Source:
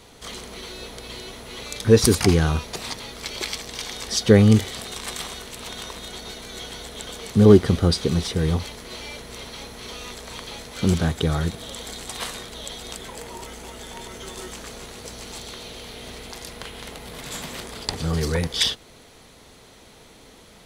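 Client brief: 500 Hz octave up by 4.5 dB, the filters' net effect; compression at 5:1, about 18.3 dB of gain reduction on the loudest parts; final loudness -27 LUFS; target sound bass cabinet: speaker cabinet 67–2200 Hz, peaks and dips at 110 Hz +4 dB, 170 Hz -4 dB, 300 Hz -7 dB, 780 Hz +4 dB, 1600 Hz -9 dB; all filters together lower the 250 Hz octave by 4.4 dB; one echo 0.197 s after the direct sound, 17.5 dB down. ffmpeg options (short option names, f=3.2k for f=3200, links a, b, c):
-af "equalizer=f=250:t=o:g=-5,equalizer=f=500:t=o:g=8,acompressor=threshold=-26dB:ratio=5,highpass=f=67:w=0.5412,highpass=f=67:w=1.3066,equalizer=f=110:t=q:w=4:g=4,equalizer=f=170:t=q:w=4:g=-4,equalizer=f=300:t=q:w=4:g=-7,equalizer=f=780:t=q:w=4:g=4,equalizer=f=1.6k:t=q:w=4:g=-9,lowpass=f=2.2k:w=0.5412,lowpass=f=2.2k:w=1.3066,aecho=1:1:197:0.133,volume=8dB"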